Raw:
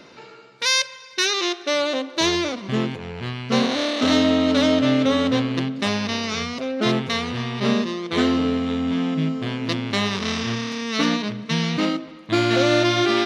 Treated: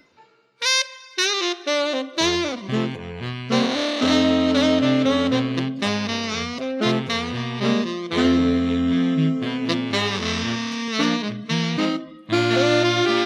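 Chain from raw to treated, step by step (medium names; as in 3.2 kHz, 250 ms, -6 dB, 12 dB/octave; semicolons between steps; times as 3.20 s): spectral noise reduction 14 dB; 8.23–10.88 s: doubling 12 ms -5 dB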